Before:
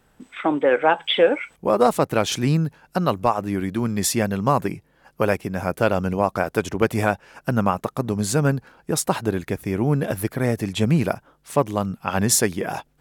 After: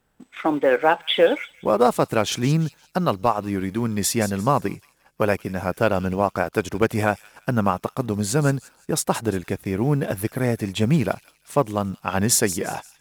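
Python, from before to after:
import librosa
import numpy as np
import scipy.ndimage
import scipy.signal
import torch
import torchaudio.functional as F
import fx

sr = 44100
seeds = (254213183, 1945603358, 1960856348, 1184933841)

y = fx.law_mismatch(x, sr, coded='A')
y = fx.echo_wet_highpass(y, sr, ms=173, feedback_pct=33, hz=3500.0, wet_db=-11.0)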